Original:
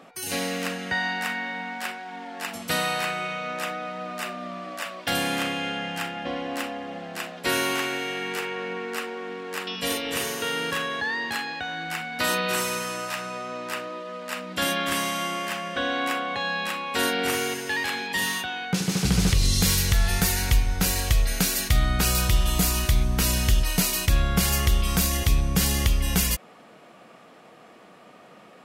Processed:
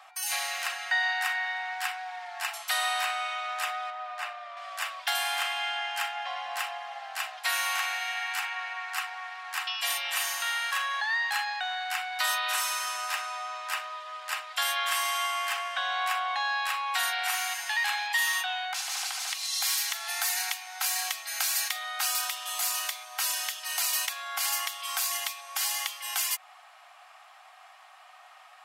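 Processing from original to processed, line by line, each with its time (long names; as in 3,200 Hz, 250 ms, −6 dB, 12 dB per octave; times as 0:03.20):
0:03.90–0:04.57: low-pass filter 2,100 Hz 6 dB per octave
whole clip: downward compressor 2.5 to 1, threshold −24 dBFS; Butterworth high-pass 680 Hz 72 dB per octave; comb filter 3.8 ms, depth 40%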